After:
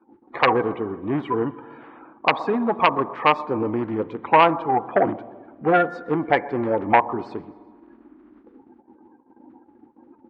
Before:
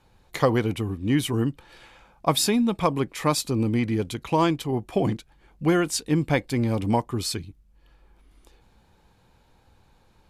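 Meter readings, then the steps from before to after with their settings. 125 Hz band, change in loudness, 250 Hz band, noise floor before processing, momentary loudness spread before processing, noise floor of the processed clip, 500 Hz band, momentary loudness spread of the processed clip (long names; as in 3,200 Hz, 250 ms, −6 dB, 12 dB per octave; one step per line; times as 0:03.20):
−8.0 dB, +3.0 dB, −2.0 dB, −60 dBFS, 6 LU, −57 dBFS, +4.5 dB, 11 LU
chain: spectral magnitudes quantised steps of 30 dB
noise in a band 220–350 Hz −50 dBFS
spring reverb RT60 1.8 s, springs 39/55 ms, chirp 65 ms, DRR 16.5 dB
dynamic equaliser 750 Hz, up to +4 dB, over −35 dBFS, Q 1.4
repeating echo 127 ms, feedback 51%, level −23.5 dB
noise gate −49 dBFS, range −14 dB
low-pass filter 1,200 Hz 24 dB per octave
sine wavefolder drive 7 dB, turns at −4 dBFS
first difference
boost into a limiter +18 dB
level −1 dB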